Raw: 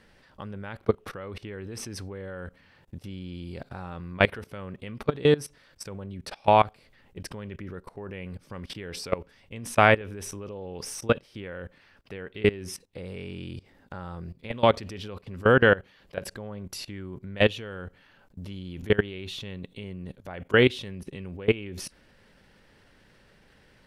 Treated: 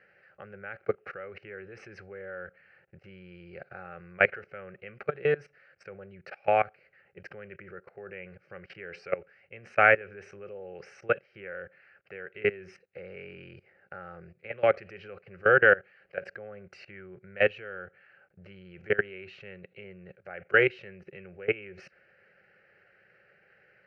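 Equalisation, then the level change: cabinet simulation 280–3000 Hz, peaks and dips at 290 Hz -9 dB, 450 Hz -7 dB, 650 Hz -8 dB, 1.1 kHz -10 dB, 1.9 kHz -4 dB; static phaser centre 950 Hz, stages 6; +5.5 dB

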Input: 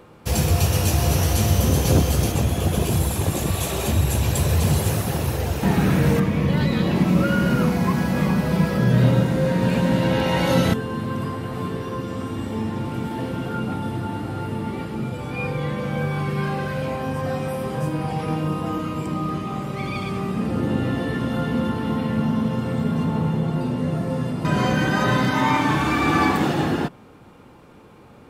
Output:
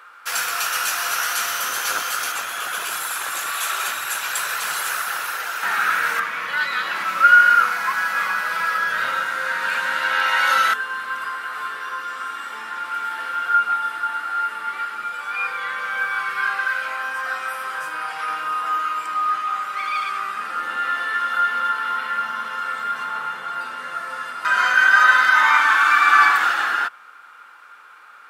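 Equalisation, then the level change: resonant high-pass 1.4 kHz, resonance Q 6.1; +2.0 dB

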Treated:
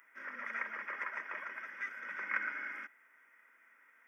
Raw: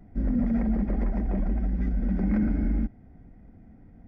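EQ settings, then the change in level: high-pass 940 Hz 24 dB/octave; static phaser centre 1.8 kHz, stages 4; +12.5 dB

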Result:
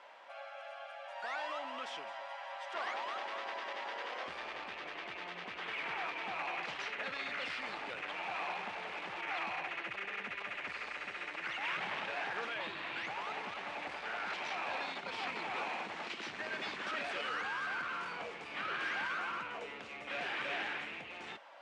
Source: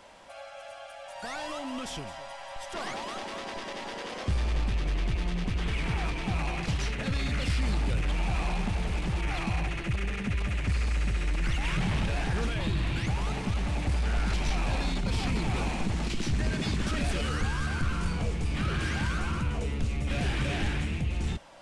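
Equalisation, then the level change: band-pass 550–2200 Hz; tilt EQ +2 dB/octave; -1.0 dB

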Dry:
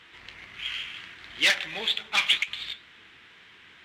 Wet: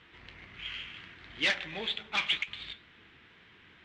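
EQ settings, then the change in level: distance through air 95 m; bass shelf 460 Hz +8.5 dB; -5.5 dB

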